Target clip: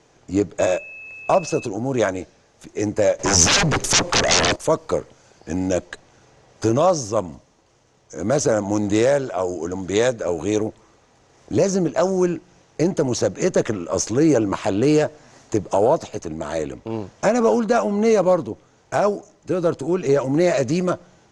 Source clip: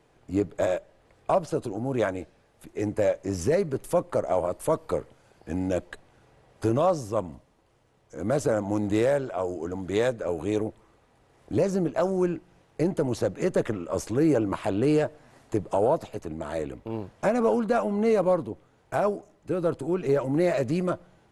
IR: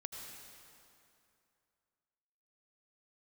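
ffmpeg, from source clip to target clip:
-filter_complex "[0:a]lowshelf=f=65:g=-6.5,asettb=1/sr,asplit=3[a][b][c];[a]atrim=end=3.194[d];[b]atrim=start=3.19:end=4.56,asetpts=PTS-STARTPTS,afade=t=in:d=0.004:c=qsin,afade=t=out:st=1.366:d=0.004:c=qsin,aeval=exprs='0.0841*sin(PI/2*3.16*val(0)/0.0841)':c=same[e];[c]atrim=start=4.556[f];[d][e]acrossfade=d=0.004:c1=hsin:c2=qsin[g];[g][f]acrossfade=d=0.004:c1=qsin:c2=hsin,lowpass=f=6.3k:t=q:w=3.9,asettb=1/sr,asplit=3[h][i][j];[h]atrim=end=0.594[k];[i]atrim=start=0.59:end=1.66,asetpts=PTS-STARTPTS,afade=t=in:d=0.004:c=qsin,afade=t=out:st=1.066:d=0.004:c=qsin,aeval=exprs='val(0)+0.00891*sin(2*PI*2600*n/s)':c=same[l];[j]atrim=start=1.656[m];[k][l]acrossfade=d=0.004:c1=hsin:c2=qsin[n];[n][m]acrossfade=d=0.004:c1=qsin:c2=hsin,volume=6dB"

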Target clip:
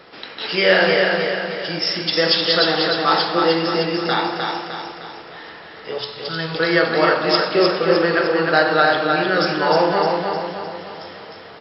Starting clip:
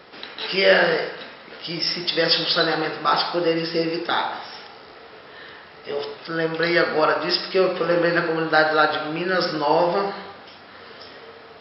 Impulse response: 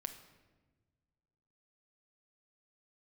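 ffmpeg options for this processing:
-filter_complex "[0:a]asettb=1/sr,asplit=3[a][b][c];[a]atrim=end=5.984[d];[b]atrim=start=5.98:end=6.55,asetpts=PTS-STARTPTS,afade=t=in:d=0.004:c=qsin,afade=t=out:st=0.566:d=0.004:c=qsin,equalizer=f=125:t=o:w=1:g=9,equalizer=f=250:t=o:w=1:g=-9,equalizer=f=500:t=o:w=1:g=-10,equalizer=f=2k:t=o:w=1:g=-4,equalizer=f=4k:t=o:w=1:g=10[e];[c]atrim=start=6.546[f];[d][e]acrossfade=d=0.004:c1=hsin:c2=qsin[g];[g][f]acrossfade=d=0.004:c1=qsin:c2=hsin,aecho=1:1:306|612|918|1224|1530|1836:0.631|0.303|0.145|0.0698|0.0335|0.0161,asplit=2[h][i];[1:a]atrim=start_sample=2205[j];[i][j]afir=irnorm=-1:irlink=0,volume=6.5dB[k];[h][k]amix=inputs=2:normalize=0,volume=-6.5dB"

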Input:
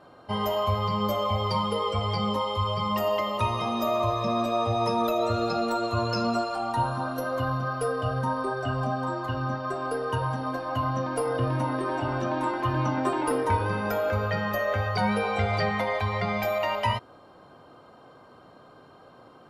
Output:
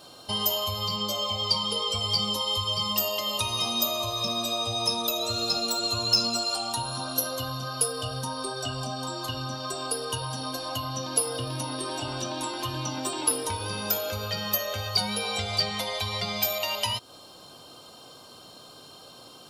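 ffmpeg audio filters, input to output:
-filter_complex "[0:a]acompressor=threshold=-33dB:ratio=2.5,aexciter=amount=4.2:drive=9.9:freq=2.9k,asettb=1/sr,asplit=3[a][b][c];[a]atrim=end=0.964[d];[b]atrim=start=0.96:end=1.91,asetpts=PTS-STARTPTS,afade=t=in:d=0.004:c=qsin,afade=t=out:st=0.946:d=0.004:c=qsin,highpass=100,lowpass=8k[e];[c]atrim=start=1.906[f];[d][e]acrossfade=d=0.004:c1=hsin:c2=qsin[g];[g][f]acrossfade=d=0.004:c1=qsin:c2=hsin"

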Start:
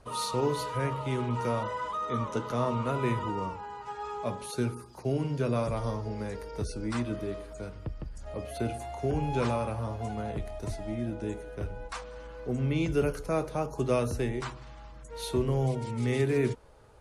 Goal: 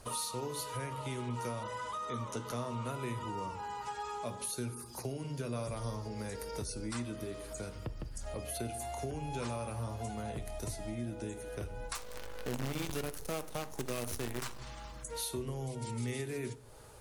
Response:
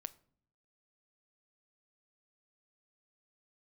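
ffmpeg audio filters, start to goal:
-filter_complex "[0:a]aemphasis=mode=production:type=75kf,acompressor=threshold=-39dB:ratio=4,asettb=1/sr,asplit=3[a][b][c];[a]atrim=end=11.954[d];[b]atrim=start=11.95:end=14.59,asetpts=PTS-STARTPTS,afade=t=in:d=0.004:c=qsin,afade=t=out:st=2.636:d=0.004:c=qsin,acrusher=bits=7:dc=4:mix=0:aa=0.000001[e];[c]atrim=start=14.586[f];[d][e]acrossfade=d=0.004:c1=hsin:c2=qsin[g];[g][f]acrossfade=d=0.004:c1=qsin:c2=hsin[h];[1:a]atrim=start_sample=2205,asetrate=34839,aresample=44100[i];[h][i]afir=irnorm=-1:irlink=0,volume=4dB"

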